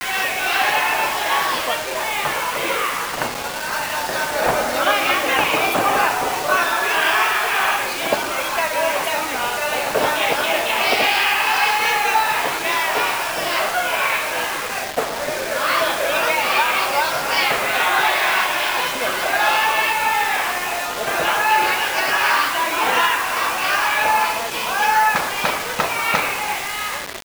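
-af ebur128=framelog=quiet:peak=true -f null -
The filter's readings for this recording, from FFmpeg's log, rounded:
Integrated loudness:
  I:         -18.3 LUFS
  Threshold: -28.3 LUFS
Loudness range:
  LRA:         3.0 LU
  Threshold: -38.2 LUFS
  LRA low:   -20.1 LUFS
  LRA high:  -17.1 LUFS
True peak:
  Peak:       -2.5 dBFS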